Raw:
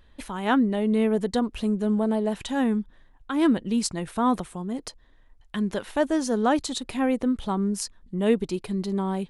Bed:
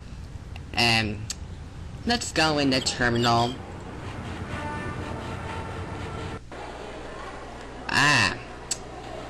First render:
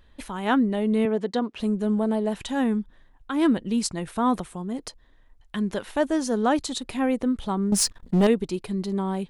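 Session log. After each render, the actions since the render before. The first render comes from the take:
0:01.05–0:01.60: band-pass filter 210–5,100 Hz
0:07.72–0:08.27: leveller curve on the samples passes 3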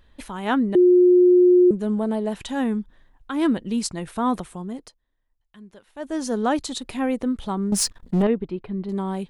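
0:00.75–0:01.71: beep over 359 Hz −10.5 dBFS
0:04.66–0:06.25: duck −18.5 dB, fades 0.30 s linear
0:08.22–0:08.89: high-frequency loss of the air 450 metres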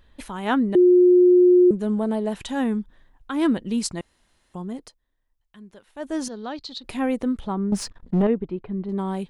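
0:04.01–0:04.54: fill with room tone
0:06.28–0:06.84: transistor ladder low-pass 4,900 Hz, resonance 65%
0:07.40–0:08.99: low-pass filter 1,900 Hz 6 dB per octave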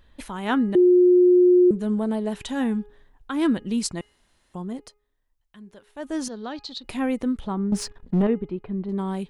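hum removal 415.7 Hz, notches 7
dynamic equaliser 660 Hz, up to −3 dB, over −33 dBFS, Q 1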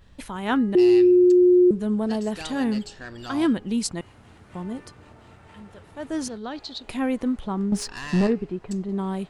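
mix in bed −16 dB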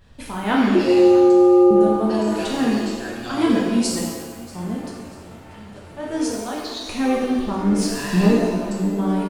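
repeating echo 638 ms, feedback 41%, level −20 dB
reverb with rising layers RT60 1.2 s, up +7 semitones, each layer −8 dB, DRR −3.5 dB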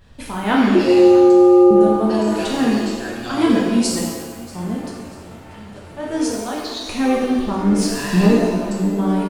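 level +2.5 dB
brickwall limiter −2 dBFS, peak gain reduction 1 dB

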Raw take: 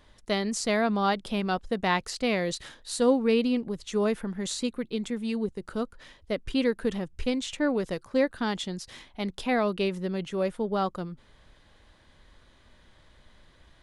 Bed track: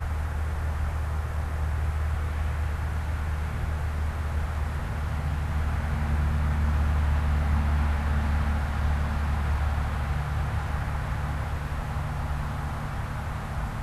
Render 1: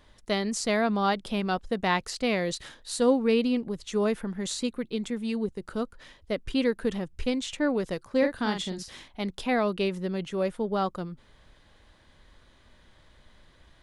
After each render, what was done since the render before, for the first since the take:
0:08.18–0:09.08: double-tracking delay 42 ms −6 dB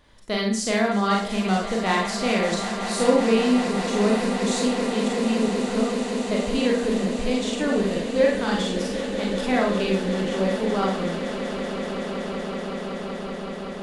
on a send: echo that builds up and dies away 189 ms, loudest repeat 8, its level −14 dB
on the sum: four-comb reverb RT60 0.4 s, combs from 32 ms, DRR −1.5 dB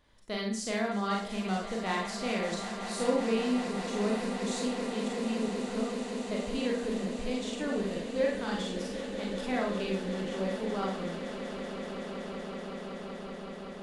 level −9.5 dB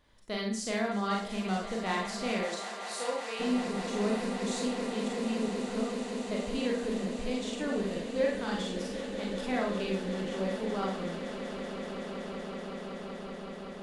0:02.44–0:03.39: high-pass filter 300 Hz → 870 Hz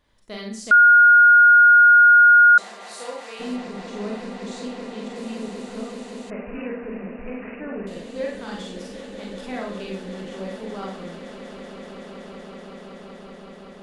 0:00.71–0:02.58: beep over 1,430 Hz −8 dBFS
0:03.56–0:05.16: high-frequency loss of the air 57 metres
0:06.30–0:07.87: bad sample-rate conversion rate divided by 8×, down none, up filtered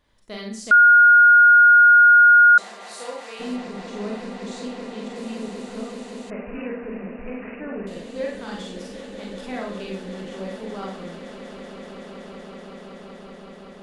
no processing that can be heard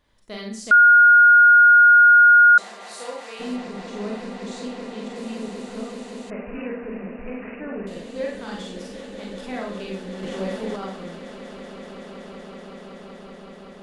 0:10.23–0:10.76: clip gain +4.5 dB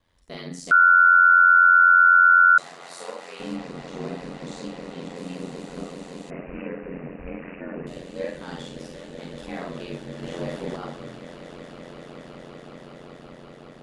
ring modulation 44 Hz

